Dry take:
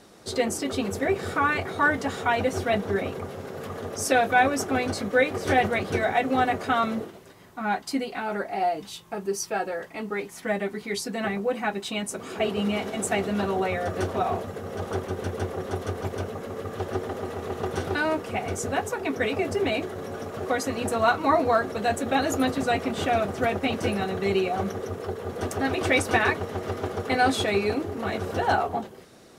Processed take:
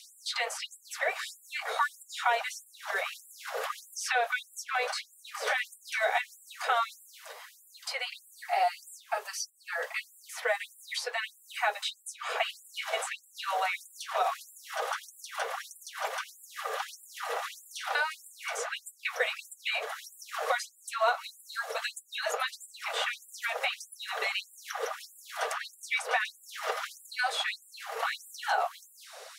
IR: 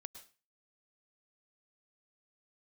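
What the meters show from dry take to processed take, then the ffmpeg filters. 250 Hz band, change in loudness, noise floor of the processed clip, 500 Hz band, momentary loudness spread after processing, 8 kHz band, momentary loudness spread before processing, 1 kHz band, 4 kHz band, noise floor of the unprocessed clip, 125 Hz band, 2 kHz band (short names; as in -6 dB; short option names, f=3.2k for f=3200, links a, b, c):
under -40 dB, -6.5 dB, -59 dBFS, -11.0 dB, 11 LU, -4.0 dB, 10 LU, -6.0 dB, -0.5 dB, -47 dBFS, under -40 dB, -3.5 dB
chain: -filter_complex "[0:a]acrossover=split=900|4000[a][b][c];[a]acompressor=threshold=-38dB:ratio=4[d];[b]acompressor=threshold=-38dB:ratio=4[e];[c]acompressor=threshold=-53dB:ratio=4[f];[d][e][f]amix=inputs=3:normalize=0,afftfilt=real='re*gte(b*sr/1024,420*pow(7300/420,0.5+0.5*sin(2*PI*1.6*pts/sr)))':imag='im*gte(b*sr/1024,420*pow(7300/420,0.5+0.5*sin(2*PI*1.6*pts/sr)))':win_size=1024:overlap=0.75,volume=8dB"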